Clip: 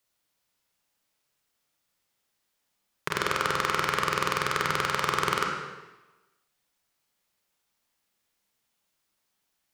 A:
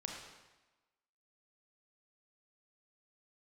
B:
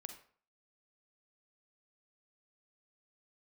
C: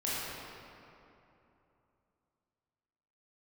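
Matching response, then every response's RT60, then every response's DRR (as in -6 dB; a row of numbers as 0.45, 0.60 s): A; 1.1, 0.50, 3.0 s; 0.0, 6.5, -9.0 dB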